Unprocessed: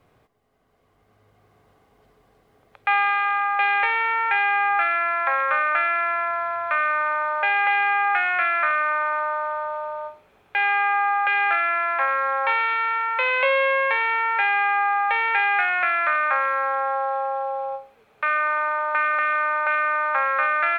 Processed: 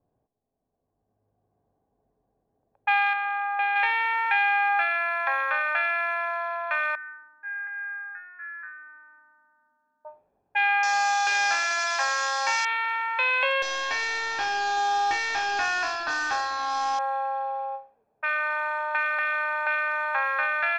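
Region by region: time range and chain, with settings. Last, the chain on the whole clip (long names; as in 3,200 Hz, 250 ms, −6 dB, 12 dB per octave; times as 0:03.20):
0:03.13–0:03.76: low-pass filter 1,500 Hz 6 dB per octave + low-shelf EQ 150 Hz −9 dB
0:06.95–0:10.05: pair of resonant band-passes 650 Hz, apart 2.7 octaves + high-frequency loss of the air 420 metres
0:10.83–0:12.65: linear delta modulator 32 kbit/s, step −27 dBFS + bass and treble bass −14 dB, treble +2 dB
0:13.62–0:16.99: linear delta modulator 32 kbit/s, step −33.5 dBFS + comb filter 2.7 ms, depth 55%
whole clip: low-pass that shuts in the quiet parts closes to 370 Hz, open at −18.5 dBFS; bass and treble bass −13 dB, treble +13 dB; comb filter 1.2 ms, depth 47%; level −4.5 dB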